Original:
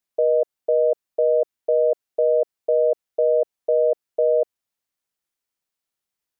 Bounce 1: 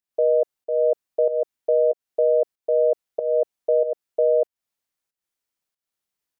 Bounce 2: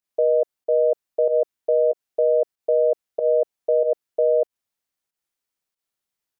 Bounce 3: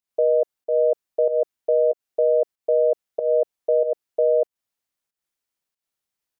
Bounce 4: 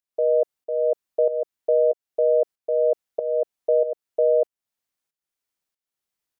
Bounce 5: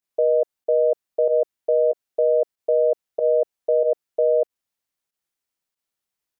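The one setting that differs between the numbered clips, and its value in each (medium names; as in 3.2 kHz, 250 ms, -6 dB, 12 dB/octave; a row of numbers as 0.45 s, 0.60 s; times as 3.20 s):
volume shaper, release: 313 ms, 105 ms, 197 ms, 525 ms, 71 ms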